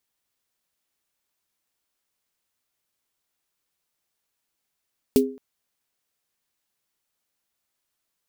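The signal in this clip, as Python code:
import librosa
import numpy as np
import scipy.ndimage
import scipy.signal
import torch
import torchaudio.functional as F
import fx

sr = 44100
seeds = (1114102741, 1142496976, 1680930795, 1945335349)

y = fx.drum_snare(sr, seeds[0], length_s=0.22, hz=260.0, second_hz=410.0, noise_db=-10, noise_from_hz=2600.0, decay_s=0.39, noise_decay_s=0.11)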